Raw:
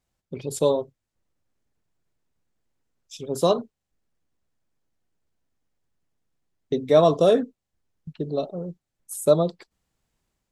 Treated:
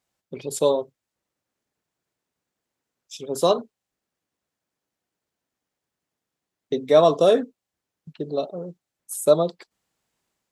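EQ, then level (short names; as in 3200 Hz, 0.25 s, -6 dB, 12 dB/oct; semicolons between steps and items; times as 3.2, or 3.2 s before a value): HPF 320 Hz 6 dB/oct; +2.5 dB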